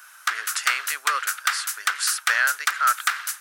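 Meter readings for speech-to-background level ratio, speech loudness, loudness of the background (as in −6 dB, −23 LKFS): 0.0 dB, −25.5 LKFS, −25.5 LKFS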